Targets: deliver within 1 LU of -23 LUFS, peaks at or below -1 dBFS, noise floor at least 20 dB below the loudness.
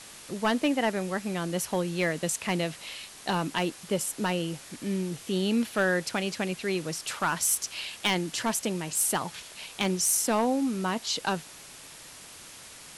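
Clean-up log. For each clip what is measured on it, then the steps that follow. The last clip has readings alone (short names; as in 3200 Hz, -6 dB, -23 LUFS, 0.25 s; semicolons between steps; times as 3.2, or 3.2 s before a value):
clipped 0.3%; flat tops at -17.5 dBFS; noise floor -47 dBFS; noise floor target -49 dBFS; loudness -28.5 LUFS; peak -17.5 dBFS; loudness target -23.0 LUFS
-> clip repair -17.5 dBFS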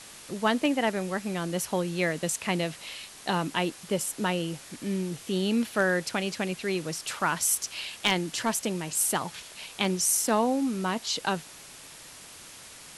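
clipped 0.0%; noise floor -47 dBFS; noise floor target -48 dBFS
-> denoiser 6 dB, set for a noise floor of -47 dBFS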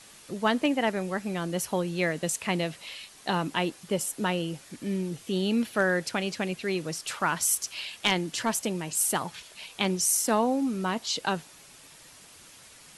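noise floor -52 dBFS; loudness -28.0 LUFS; peak -8.5 dBFS; loudness target -23.0 LUFS
-> gain +5 dB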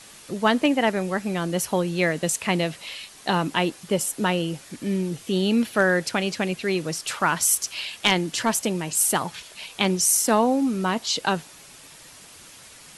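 loudness -23.0 LUFS; peak -3.5 dBFS; noise floor -47 dBFS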